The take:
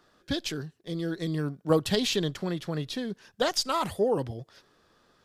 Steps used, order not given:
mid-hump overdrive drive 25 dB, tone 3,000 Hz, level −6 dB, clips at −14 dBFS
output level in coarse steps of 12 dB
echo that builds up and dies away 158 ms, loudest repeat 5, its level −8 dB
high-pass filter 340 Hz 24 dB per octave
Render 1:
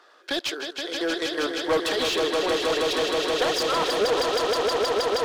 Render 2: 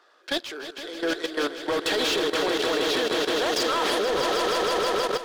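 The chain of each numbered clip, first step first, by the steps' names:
high-pass filter, then output level in coarse steps, then echo that builds up and dies away, then mid-hump overdrive
high-pass filter, then mid-hump overdrive, then echo that builds up and dies away, then output level in coarse steps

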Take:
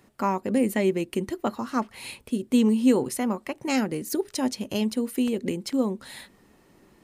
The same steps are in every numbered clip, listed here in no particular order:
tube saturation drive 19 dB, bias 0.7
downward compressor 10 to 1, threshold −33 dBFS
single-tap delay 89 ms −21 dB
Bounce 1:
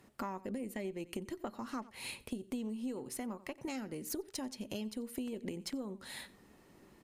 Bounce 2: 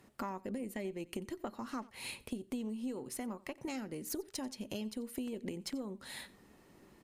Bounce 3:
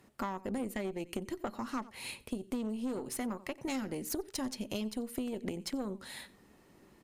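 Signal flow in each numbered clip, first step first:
single-tap delay, then downward compressor, then tube saturation
downward compressor, then single-tap delay, then tube saturation
single-tap delay, then tube saturation, then downward compressor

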